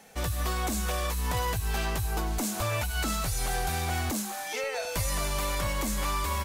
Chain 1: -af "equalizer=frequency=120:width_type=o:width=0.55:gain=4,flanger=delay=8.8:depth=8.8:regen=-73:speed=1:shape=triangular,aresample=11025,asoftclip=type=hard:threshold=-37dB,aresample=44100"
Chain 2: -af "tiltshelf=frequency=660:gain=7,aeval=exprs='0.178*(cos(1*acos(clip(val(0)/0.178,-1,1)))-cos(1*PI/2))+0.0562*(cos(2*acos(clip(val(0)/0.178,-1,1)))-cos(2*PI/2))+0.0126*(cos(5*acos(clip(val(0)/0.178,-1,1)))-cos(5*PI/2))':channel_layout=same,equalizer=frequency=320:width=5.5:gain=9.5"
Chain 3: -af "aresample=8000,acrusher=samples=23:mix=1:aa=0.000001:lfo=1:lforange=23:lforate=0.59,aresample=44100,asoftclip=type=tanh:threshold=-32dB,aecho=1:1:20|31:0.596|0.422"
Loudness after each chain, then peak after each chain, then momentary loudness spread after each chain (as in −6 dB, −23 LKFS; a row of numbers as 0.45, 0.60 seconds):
−40.0, −25.5, −35.5 LKFS; −33.0, −11.0, −26.0 dBFS; 1, 3, 3 LU